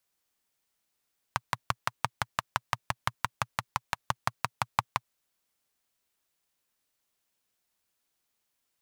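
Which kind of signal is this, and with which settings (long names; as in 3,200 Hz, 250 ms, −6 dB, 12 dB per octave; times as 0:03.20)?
pulse-train model of a single-cylinder engine, steady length 3.66 s, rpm 700, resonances 120/990 Hz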